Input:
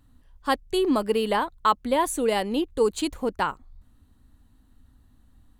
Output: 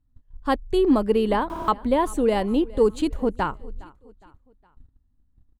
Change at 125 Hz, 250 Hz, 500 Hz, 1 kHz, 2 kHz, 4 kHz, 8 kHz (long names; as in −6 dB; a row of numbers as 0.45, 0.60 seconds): +7.0, +4.5, +3.0, −0.5, −2.0, −4.5, −7.5 decibels